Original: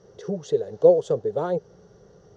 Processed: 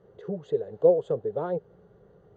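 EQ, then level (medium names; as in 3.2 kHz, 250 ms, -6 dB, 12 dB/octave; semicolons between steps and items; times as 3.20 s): boxcar filter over 8 samples; -4.0 dB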